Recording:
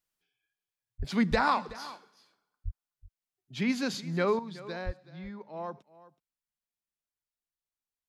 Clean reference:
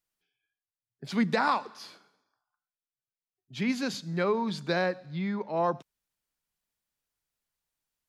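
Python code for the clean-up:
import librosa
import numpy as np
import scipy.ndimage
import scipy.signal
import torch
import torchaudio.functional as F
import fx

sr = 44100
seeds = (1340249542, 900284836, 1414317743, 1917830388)

y = fx.fix_deplosive(x, sr, at_s=(0.98, 1.3, 2.64, 4.85))
y = fx.fix_echo_inverse(y, sr, delay_ms=374, level_db=-18.0)
y = fx.gain(y, sr, db=fx.steps((0.0, 0.0), (4.39, 11.0)))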